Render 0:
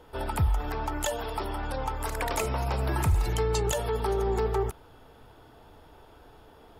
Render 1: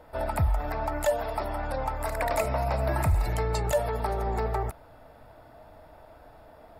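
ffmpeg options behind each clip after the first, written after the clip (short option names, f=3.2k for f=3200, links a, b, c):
-af "equalizer=f=400:t=o:w=0.33:g=-9,equalizer=f=630:t=o:w=0.33:g=12,equalizer=f=2k:t=o:w=0.33:g=4,equalizer=f=3.15k:t=o:w=0.33:g=-10,equalizer=f=6.3k:t=o:w=0.33:g=-9,equalizer=f=10k:t=o:w=0.33:g=-3"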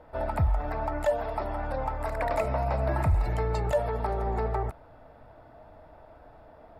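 -af "lowpass=f=2k:p=1"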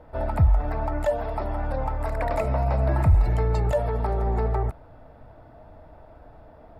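-af "lowshelf=f=330:g=7"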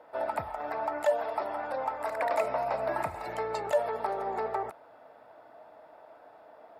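-af "highpass=510"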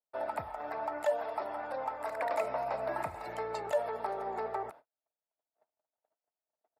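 -af "agate=range=-44dB:threshold=-47dB:ratio=16:detection=peak,volume=-4dB"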